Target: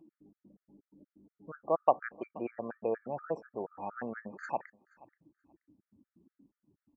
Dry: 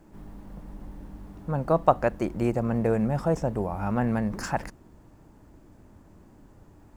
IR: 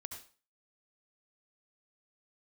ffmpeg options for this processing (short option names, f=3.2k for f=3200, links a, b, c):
-filter_complex "[0:a]afftdn=nr=34:nf=-41,acompressor=mode=upward:threshold=-33dB:ratio=2.5,highpass=380,lowpass=3k,asplit=2[a][b];[b]aecho=0:1:479|958:0.0668|0.012[c];[a][c]amix=inputs=2:normalize=0,afftfilt=real='re*gt(sin(2*PI*4.2*pts/sr)*(1-2*mod(floor(b*sr/1024/1200),2)),0)':imag='im*gt(sin(2*PI*4.2*pts/sr)*(1-2*mod(floor(b*sr/1024/1200),2)),0)':win_size=1024:overlap=0.75,volume=-4.5dB"